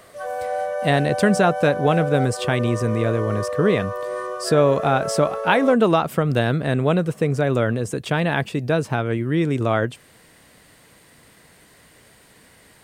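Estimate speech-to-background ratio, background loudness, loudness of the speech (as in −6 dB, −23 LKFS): 7.0 dB, −27.5 LKFS, −20.5 LKFS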